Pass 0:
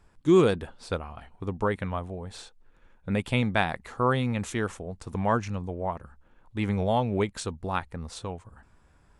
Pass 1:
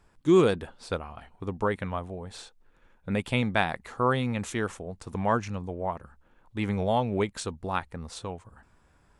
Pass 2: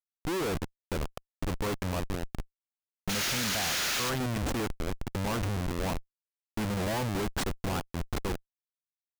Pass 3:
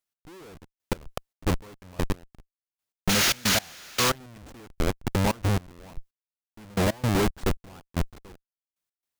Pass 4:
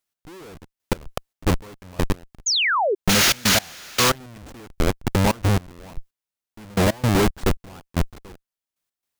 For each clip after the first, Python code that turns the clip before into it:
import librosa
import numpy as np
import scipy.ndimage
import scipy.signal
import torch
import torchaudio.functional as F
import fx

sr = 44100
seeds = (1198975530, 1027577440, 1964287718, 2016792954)

y1 = fx.low_shelf(x, sr, hz=130.0, db=-4.0)
y2 = fx.spec_paint(y1, sr, seeds[0], shape='noise', start_s=3.09, length_s=1.01, low_hz=1200.0, high_hz=7100.0, level_db=-25.0)
y2 = fx.schmitt(y2, sr, flips_db=-33.5)
y2 = y2 * 10.0 ** (-1.5 / 20.0)
y3 = fx.step_gate(y2, sr, bpm=113, pattern='x.....x.xx.x...', floor_db=-24.0, edge_ms=4.5)
y3 = y3 * 10.0 ** (8.5 / 20.0)
y4 = fx.spec_paint(y3, sr, seeds[1], shape='fall', start_s=2.46, length_s=0.49, low_hz=360.0, high_hz=7100.0, level_db=-25.0)
y4 = y4 * 10.0 ** (5.0 / 20.0)